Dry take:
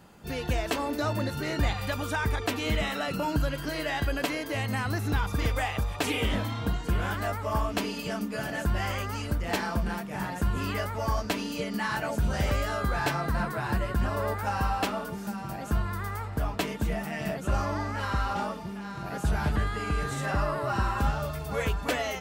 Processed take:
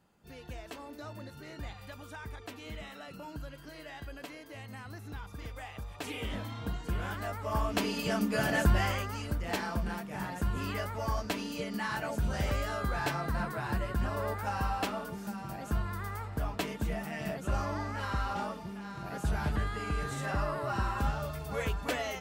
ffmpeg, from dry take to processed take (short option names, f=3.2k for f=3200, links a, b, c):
-af "volume=4dB,afade=t=in:st=5.57:d=1.27:silence=0.354813,afade=t=in:st=7.34:d=1.22:silence=0.298538,afade=t=out:st=8.56:d=0.53:silence=0.375837"